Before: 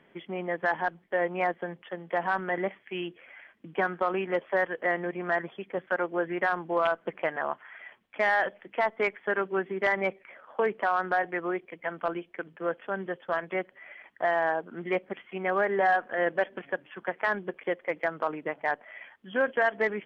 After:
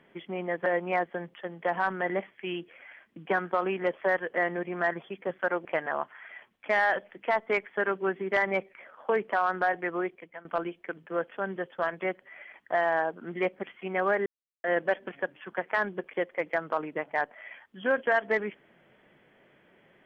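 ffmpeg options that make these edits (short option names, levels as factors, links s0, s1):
-filter_complex "[0:a]asplit=6[s0][s1][s2][s3][s4][s5];[s0]atrim=end=0.662[s6];[s1]atrim=start=1.138:end=6.132[s7];[s2]atrim=start=7.148:end=11.95,asetpts=PTS-STARTPTS,afade=t=out:st=4.412:d=0.39:silence=0.105925[s8];[s3]atrim=start=11.95:end=15.76,asetpts=PTS-STARTPTS,afade=t=in:d=0.004:c=hsin:silence=0.105925,afade=t=out:st=3.806:d=0.004:c=hsin[s9];[s4]atrim=start=15.76:end=16.14,asetpts=PTS-STARTPTS,volume=0[s10];[s5]atrim=start=16.14,asetpts=PTS-STARTPTS,afade=t=in:d=0.004:c=hsin[s11];[s6][s7]acrossfade=d=0.004:c1=hsin:c2=hsin[s12];[s8][s9][s10][s11]concat=n=4:v=0:a=1[s13];[s12][s13]acrossfade=d=0.004:c1=hsin:c2=hsin"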